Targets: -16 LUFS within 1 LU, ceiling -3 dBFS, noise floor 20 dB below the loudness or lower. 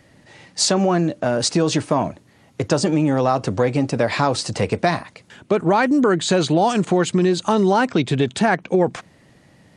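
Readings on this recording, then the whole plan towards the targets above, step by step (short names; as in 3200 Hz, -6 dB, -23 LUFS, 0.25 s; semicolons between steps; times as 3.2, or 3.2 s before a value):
loudness -19.0 LUFS; peak -3.5 dBFS; loudness target -16.0 LUFS
-> gain +3 dB; limiter -3 dBFS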